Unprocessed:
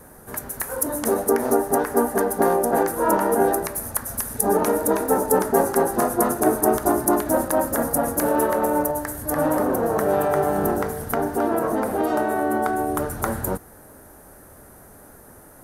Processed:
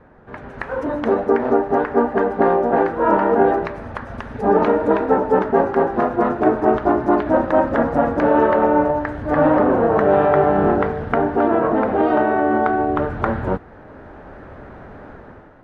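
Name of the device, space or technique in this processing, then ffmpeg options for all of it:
action camera in a waterproof case: -af "lowpass=frequency=3000:width=0.5412,lowpass=frequency=3000:width=1.3066,dynaudnorm=framelen=150:gausssize=7:maxgain=11.5dB,volume=-1.5dB" -ar 44100 -c:a aac -b:a 64k

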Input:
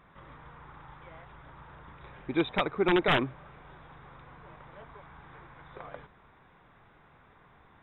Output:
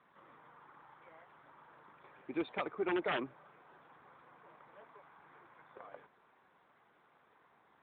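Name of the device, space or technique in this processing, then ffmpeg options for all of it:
telephone: -af "highpass=260,lowpass=3600,asoftclip=type=tanh:threshold=-18dB,volume=-6.5dB" -ar 8000 -c:a libopencore_amrnb -b:a 12200

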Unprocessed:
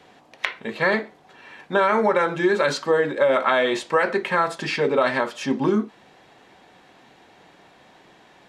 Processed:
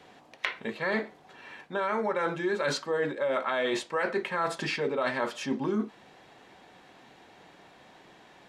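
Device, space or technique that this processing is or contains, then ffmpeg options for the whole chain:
compression on the reversed sound: -af "areverse,acompressor=threshold=-23dB:ratio=6,areverse,volume=-2.5dB"

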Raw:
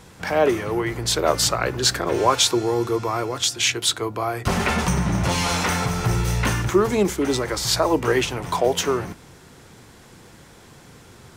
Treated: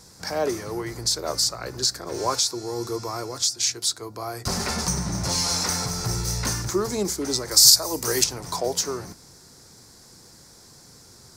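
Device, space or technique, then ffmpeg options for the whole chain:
over-bright horn tweeter: -filter_complex "[0:a]highshelf=frequency=3800:width_type=q:width=3:gain=8,alimiter=limit=-4.5dB:level=0:latency=1:release=423,asettb=1/sr,asplit=3[link_01][link_02][link_03];[link_01]atrim=end=7.514[link_04];[link_02]atrim=start=7.51:end=8.24,asetpts=PTS-STARTPTS,afade=type=in:duration=0.004:curve=qsin,afade=type=out:start_time=0.726:duration=0.004:curve=qsin,aemphasis=mode=production:type=75kf[link_05];[link_03]atrim=start=8.236[link_06];[link_04][link_05]acrossfade=duration=0.004:curve1=hsin:curve2=qsin[link_07];[link_07][link_06]acrossfade=duration=0.004:curve1=qsin:curve2=hsin,volume=-6.5dB"

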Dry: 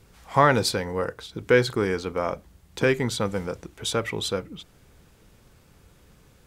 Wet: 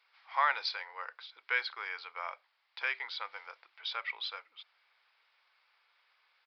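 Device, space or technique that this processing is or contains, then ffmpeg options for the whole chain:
musical greeting card: -af "aresample=11025,aresample=44100,highpass=frequency=890:width=0.5412,highpass=frequency=890:width=1.3066,equalizer=frequency=2200:width_type=o:width=0.26:gain=6,volume=-7.5dB"

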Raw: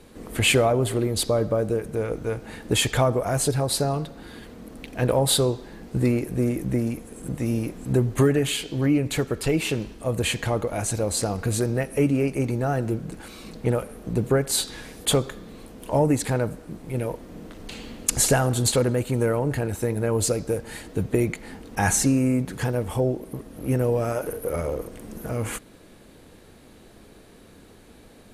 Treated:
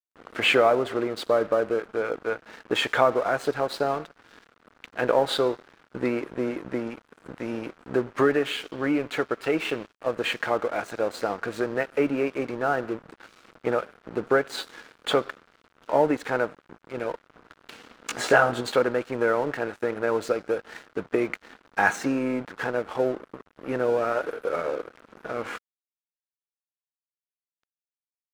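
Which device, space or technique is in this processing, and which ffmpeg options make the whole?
pocket radio on a weak battery: -filter_complex "[0:a]asplit=3[link_01][link_02][link_03];[link_01]afade=type=out:start_time=18.05:duration=0.02[link_04];[link_02]asplit=2[link_05][link_06];[link_06]adelay=17,volume=-2dB[link_07];[link_05][link_07]amix=inputs=2:normalize=0,afade=type=in:start_time=18.05:duration=0.02,afade=type=out:start_time=18.6:duration=0.02[link_08];[link_03]afade=type=in:start_time=18.6:duration=0.02[link_09];[link_04][link_08][link_09]amix=inputs=3:normalize=0,highpass=350,lowpass=3000,aeval=exprs='sgn(val(0))*max(abs(val(0))-0.00708,0)':channel_layout=same,equalizer=frequency=1400:width_type=o:width=0.57:gain=7,volume=2dB"

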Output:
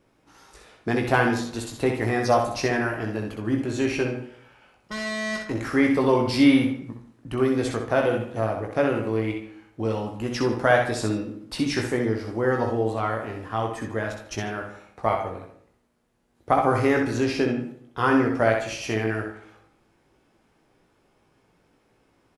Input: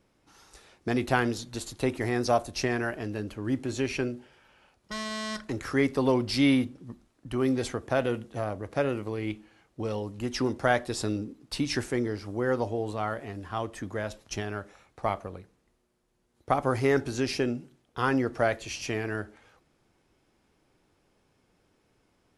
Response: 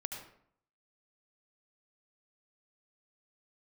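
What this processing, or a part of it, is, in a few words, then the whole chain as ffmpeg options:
filtered reverb send: -filter_complex "[0:a]asettb=1/sr,asplit=3[link_01][link_02][link_03];[link_01]atrim=end=17.184[link_04];[link_02]atrim=start=17.18:end=17.6,asetpts=PTS-STARTPTS,afade=type=in:duration=0.004:curve=qsin,afade=type=out:start_time=0.416:duration=0.004:curve=qsin,highshelf=frequency=7800:gain=-8.5[link_05];[link_03]atrim=start=17.596[link_06];[link_04][link_05]acrossfade=duration=0.004:curve1=hsin:curve2=qsin[link_07];[link_07][link_06]acrossfade=duration=0.004:curve1=qsin:curve2=hsin,asplit=2[link_08][link_09];[link_09]adelay=18,volume=-6dB[link_10];[link_08][link_10]amix=inputs=2:normalize=0,asplit=2[link_11][link_12];[link_12]highpass=frequency=170:poles=1,lowpass=3300[link_13];[1:a]atrim=start_sample=2205[link_14];[link_13][link_14]afir=irnorm=-1:irlink=0,volume=-3dB[link_15];[link_11][link_15]amix=inputs=2:normalize=0,aecho=1:1:63|146:0.531|0.112"

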